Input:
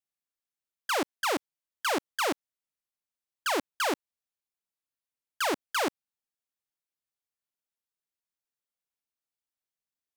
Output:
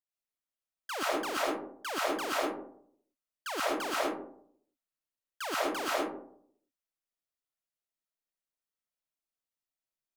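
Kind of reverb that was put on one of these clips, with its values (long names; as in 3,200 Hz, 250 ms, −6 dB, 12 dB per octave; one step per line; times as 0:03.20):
comb and all-pass reverb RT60 0.65 s, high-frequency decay 0.35×, pre-delay 85 ms, DRR −6.5 dB
level −9.5 dB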